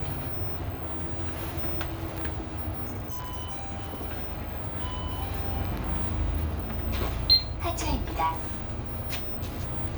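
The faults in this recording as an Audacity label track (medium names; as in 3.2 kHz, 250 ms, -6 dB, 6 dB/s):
2.860000	4.050000	clipped -30.5 dBFS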